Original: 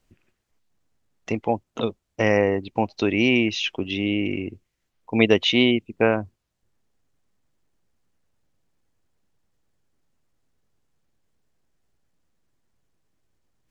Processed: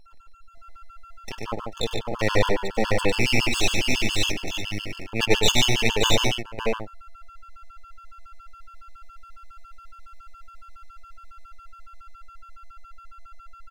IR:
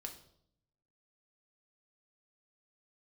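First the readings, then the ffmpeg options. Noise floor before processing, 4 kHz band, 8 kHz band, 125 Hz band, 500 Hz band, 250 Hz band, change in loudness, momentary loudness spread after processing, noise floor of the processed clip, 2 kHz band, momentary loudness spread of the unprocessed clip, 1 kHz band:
−77 dBFS, +4.0 dB, can't be measured, +2.0 dB, −3.5 dB, −7.0 dB, −1.5 dB, 14 LU, −47 dBFS, +0.5 dB, 11 LU, +1.0 dB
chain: -filter_complex "[0:a]equalizer=frequency=125:width_type=o:width=1:gain=-6,equalizer=frequency=250:width_type=o:width=1:gain=-11,equalizer=frequency=500:width_type=o:width=1:gain=3,equalizer=frequency=1000:width_type=o:width=1:gain=-10,equalizer=frequency=4000:width_type=o:width=1:gain=8,acrossover=split=150[link_01][link_02];[link_02]dynaudnorm=framelen=230:gausssize=21:maxgain=7.5dB[link_03];[link_01][link_03]amix=inputs=2:normalize=0,aeval=exprs='max(val(0),0)':channel_layout=same,aeval=exprs='val(0)+0.00501*sin(2*PI*680*n/s)':channel_layout=same,aeval=exprs='abs(val(0))':channel_layout=same,aecho=1:1:99|145|441|575|611|642:0.501|0.473|0.119|0.531|0.1|0.631,afftfilt=real='re*gt(sin(2*PI*7.2*pts/sr)*(1-2*mod(floor(b*sr/1024/880),2)),0)':imag='im*gt(sin(2*PI*7.2*pts/sr)*(1-2*mod(floor(b*sr/1024/880),2)),0)':win_size=1024:overlap=0.75,volume=3.5dB"

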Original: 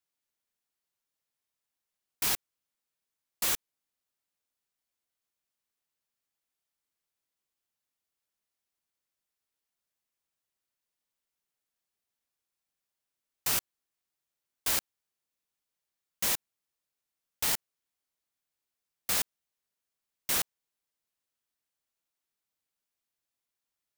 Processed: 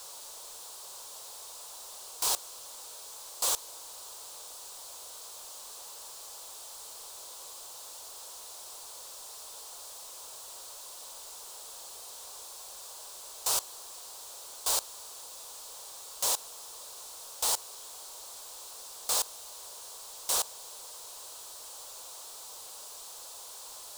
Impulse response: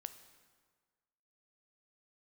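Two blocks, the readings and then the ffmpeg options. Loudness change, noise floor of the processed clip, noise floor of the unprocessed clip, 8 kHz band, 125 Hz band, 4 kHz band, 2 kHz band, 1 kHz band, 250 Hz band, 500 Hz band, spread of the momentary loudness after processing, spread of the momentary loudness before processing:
−6.5 dB, −46 dBFS, below −85 dBFS, +4.5 dB, below −10 dB, +2.5 dB, −7.0 dB, +4.5 dB, −9.0 dB, +4.0 dB, 14 LU, 5 LU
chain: -af "aeval=exprs='val(0)+0.5*0.0133*sgn(val(0))':channel_layout=same,equalizer=frequency=125:width_type=o:width=1:gain=-9,equalizer=frequency=250:width_type=o:width=1:gain=-10,equalizer=frequency=500:width_type=o:width=1:gain=9,equalizer=frequency=1000:width_type=o:width=1:gain=11,equalizer=frequency=2000:width_type=o:width=1:gain=-11,equalizer=frequency=4000:width_type=o:width=1:gain=7,equalizer=frequency=8000:width_type=o:width=1:gain=9,volume=-6dB"

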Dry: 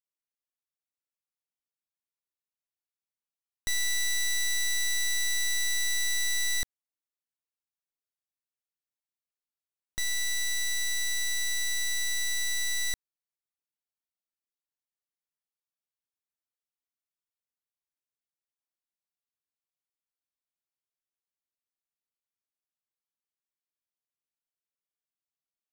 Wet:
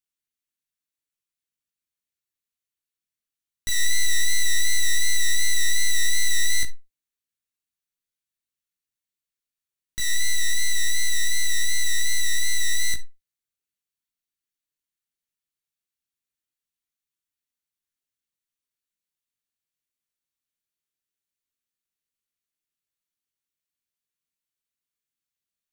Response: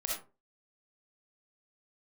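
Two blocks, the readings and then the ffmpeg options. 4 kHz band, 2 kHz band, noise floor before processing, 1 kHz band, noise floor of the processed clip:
+4.5 dB, +4.5 dB, below −85 dBFS, can't be measured, below −85 dBFS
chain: -filter_complex "[0:a]equalizer=frequency=750:width_type=o:width=1.1:gain=-14.5,bandreject=frequency=5100:width=15,flanger=delay=17.5:depth=6.6:speed=2.7,asplit=2[link_01][link_02];[1:a]atrim=start_sample=2205,asetrate=61740,aresample=44100[link_03];[link_02][link_03]afir=irnorm=-1:irlink=0,volume=-10.5dB[link_04];[link_01][link_04]amix=inputs=2:normalize=0,volume=6.5dB"

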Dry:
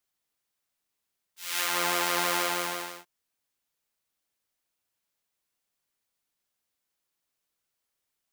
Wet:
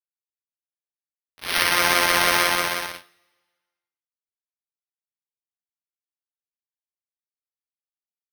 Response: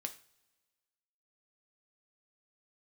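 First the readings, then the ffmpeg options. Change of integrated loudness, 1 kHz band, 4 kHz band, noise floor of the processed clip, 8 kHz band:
+8.5 dB, +7.5 dB, +9.0 dB, below −85 dBFS, +5.5 dB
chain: -filter_complex "[0:a]equalizer=frequency=800:width_type=o:width=0.33:gain=-4,equalizer=frequency=2000:width_type=o:width=0.33:gain=4,equalizer=frequency=5000:width_type=o:width=0.33:gain=-3,equalizer=frequency=10000:width_type=o:width=0.33:gain=-11,acrusher=samples=6:mix=1:aa=0.000001,aeval=exprs='sgn(val(0))*max(abs(val(0))-0.00708,0)':channel_layout=same,asplit=2[link_01][link_02];[1:a]atrim=start_sample=2205,lowshelf=frequency=430:gain=-9[link_03];[link_02][link_03]afir=irnorm=-1:irlink=0,volume=5.5dB[link_04];[link_01][link_04]amix=inputs=2:normalize=0,volume=2.5dB"

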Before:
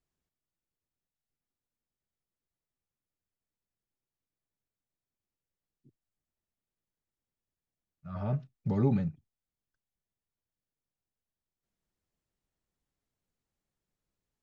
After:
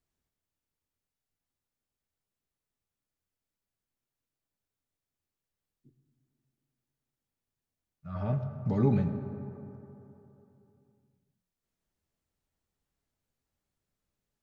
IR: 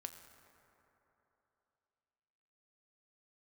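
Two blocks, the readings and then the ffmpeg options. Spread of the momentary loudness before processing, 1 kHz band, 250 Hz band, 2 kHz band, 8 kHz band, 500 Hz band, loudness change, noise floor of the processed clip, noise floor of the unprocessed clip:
10 LU, +2.0 dB, +1.5 dB, +2.5 dB, can't be measured, +2.5 dB, +0.5 dB, below −85 dBFS, below −85 dBFS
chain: -filter_complex "[1:a]atrim=start_sample=2205[link_01];[0:a][link_01]afir=irnorm=-1:irlink=0,volume=6dB"

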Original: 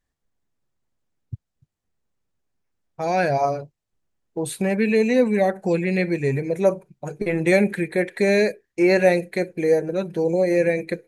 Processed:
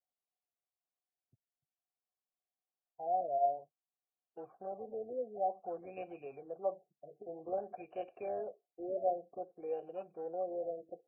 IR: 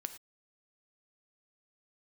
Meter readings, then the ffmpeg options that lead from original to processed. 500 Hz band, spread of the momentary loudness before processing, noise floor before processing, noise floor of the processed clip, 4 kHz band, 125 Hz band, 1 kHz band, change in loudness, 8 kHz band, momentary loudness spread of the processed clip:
−18.0 dB, 12 LU, −81 dBFS, below −85 dBFS, below −35 dB, −36.0 dB, −9.0 dB, −18.5 dB, below −40 dB, 14 LU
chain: -filter_complex "[0:a]acrossover=split=290|850|3100[link_01][link_02][link_03][link_04];[link_01]alimiter=level_in=4dB:limit=-24dB:level=0:latency=1,volume=-4dB[link_05];[link_03]acrusher=samples=19:mix=1:aa=0.000001[link_06];[link_05][link_02][link_06][link_04]amix=inputs=4:normalize=0,asplit=3[link_07][link_08][link_09];[link_07]bandpass=frequency=730:width_type=q:width=8,volume=0dB[link_10];[link_08]bandpass=frequency=1090:width_type=q:width=8,volume=-6dB[link_11];[link_09]bandpass=frequency=2440:width_type=q:width=8,volume=-9dB[link_12];[link_10][link_11][link_12]amix=inputs=3:normalize=0,bandreject=frequency=630:width=12,afftfilt=real='re*lt(b*sr/1024,710*pow(3100/710,0.5+0.5*sin(2*PI*0.53*pts/sr)))':imag='im*lt(b*sr/1024,710*pow(3100/710,0.5+0.5*sin(2*PI*0.53*pts/sr)))':win_size=1024:overlap=0.75,volume=-5dB"

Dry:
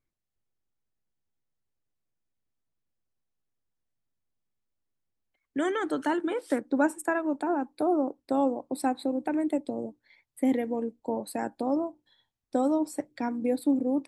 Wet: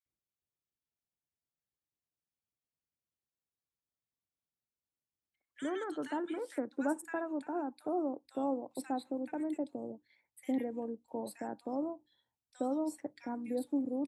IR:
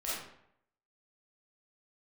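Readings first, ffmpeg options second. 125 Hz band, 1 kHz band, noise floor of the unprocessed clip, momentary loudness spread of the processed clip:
can't be measured, −9.0 dB, −85 dBFS, 7 LU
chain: -filter_complex "[0:a]highpass=53,acrossover=split=1600[link_01][link_02];[link_01]adelay=60[link_03];[link_03][link_02]amix=inputs=2:normalize=0,volume=-8.5dB"

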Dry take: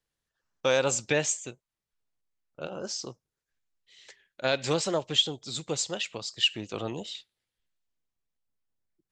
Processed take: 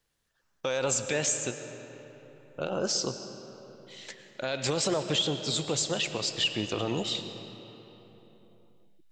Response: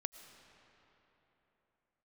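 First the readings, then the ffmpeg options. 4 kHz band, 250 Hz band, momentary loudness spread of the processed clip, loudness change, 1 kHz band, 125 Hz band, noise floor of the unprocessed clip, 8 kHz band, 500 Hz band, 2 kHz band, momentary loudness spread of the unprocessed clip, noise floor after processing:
−1.0 dB, +2.5 dB, 20 LU, −1.0 dB, −1.0 dB, +2.0 dB, below −85 dBFS, +2.0 dB, −1.0 dB, −2.0 dB, 14 LU, −73 dBFS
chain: -filter_complex "[0:a]asplit=2[link_01][link_02];[link_02]acompressor=threshold=-33dB:ratio=6,volume=-1.5dB[link_03];[link_01][link_03]amix=inputs=2:normalize=0,alimiter=limit=-20.5dB:level=0:latency=1:release=47[link_04];[1:a]atrim=start_sample=2205[link_05];[link_04][link_05]afir=irnorm=-1:irlink=0,volume=4.5dB"

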